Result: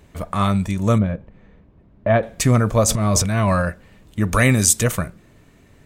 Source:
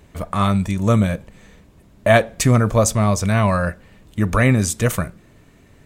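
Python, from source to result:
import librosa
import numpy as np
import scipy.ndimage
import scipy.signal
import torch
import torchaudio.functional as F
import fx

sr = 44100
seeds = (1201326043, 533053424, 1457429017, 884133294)

y = fx.spacing_loss(x, sr, db_at_10k=39, at=(0.98, 2.23))
y = fx.transient(y, sr, attack_db=-11, sustain_db=10, at=(2.87, 3.61), fade=0.02)
y = fx.high_shelf(y, sr, hz=3500.0, db=12.0, at=(4.32, 4.82), fade=0.02)
y = y * 10.0 ** (-1.0 / 20.0)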